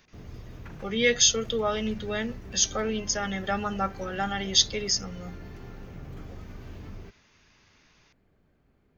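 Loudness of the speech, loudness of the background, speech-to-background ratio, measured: −26.0 LKFS, −44.0 LKFS, 18.0 dB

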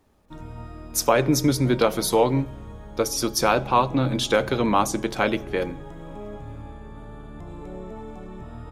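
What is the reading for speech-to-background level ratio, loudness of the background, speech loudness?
17.0 dB, −39.5 LKFS, −22.5 LKFS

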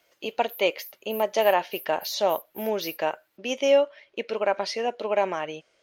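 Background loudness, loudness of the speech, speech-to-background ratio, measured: −42.0 LKFS, −26.5 LKFS, 15.5 dB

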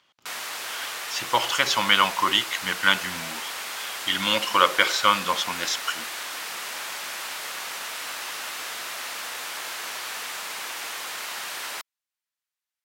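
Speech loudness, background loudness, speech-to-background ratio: −22.5 LKFS, −31.5 LKFS, 9.0 dB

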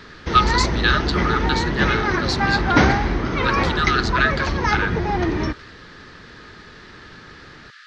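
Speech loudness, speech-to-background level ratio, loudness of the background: −23.0 LKFS, −2.0 dB, −21.0 LKFS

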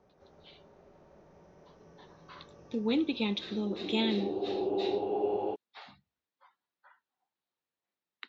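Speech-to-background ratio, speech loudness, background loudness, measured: 0.5 dB, −33.5 LKFS, −34.0 LKFS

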